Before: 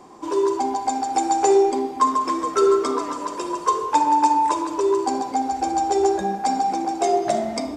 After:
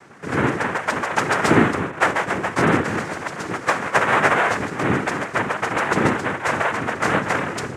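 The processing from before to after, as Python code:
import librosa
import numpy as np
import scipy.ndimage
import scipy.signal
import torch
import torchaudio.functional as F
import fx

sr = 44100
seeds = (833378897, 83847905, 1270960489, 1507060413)

y = fx.steep_lowpass(x, sr, hz=2600.0, slope=36, at=(1.9, 2.88))
y = fx.noise_vocoder(y, sr, seeds[0], bands=3)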